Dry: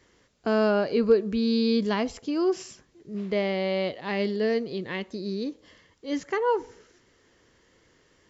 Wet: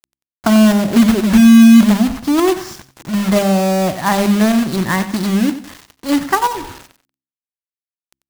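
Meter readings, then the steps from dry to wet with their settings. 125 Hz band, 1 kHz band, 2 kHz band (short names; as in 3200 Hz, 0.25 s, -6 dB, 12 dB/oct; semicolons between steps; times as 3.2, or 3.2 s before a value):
+17.5 dB, +13.5 dB, +12.0 dB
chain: median filter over 5 samples; fixed phaser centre 1100 Hz, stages 4; treble ducked by the level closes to 340 Hz, closed at -26.5 dBFS; companded quantiser 4-bit; de-hum 66.74 Hz, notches 5; maximiser +22 dB; lo-fi delay 92 ms, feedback 35%, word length 7-bit, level -13 dB; gain -1.5 dB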